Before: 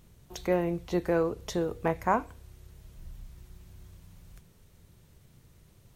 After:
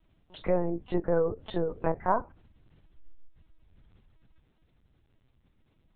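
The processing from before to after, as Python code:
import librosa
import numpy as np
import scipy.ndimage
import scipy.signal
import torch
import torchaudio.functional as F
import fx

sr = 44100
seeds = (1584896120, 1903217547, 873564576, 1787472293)

y = fx.env_lowpass_down(x, sr, base_hz=1200.0, full_db=-25.5)
y = fx.noise_reduce_blind(y, sr, reduce_db=10)
y = fx.peak_eq(y, sr, hz=210.0, db=-10.0, octaves=0.3)
y = fx.lpc_vocoder(y, sr, seeds[0], excitation='pitch_kept', order=10)
y = y * 10.0 ** (1.5 / 20.0)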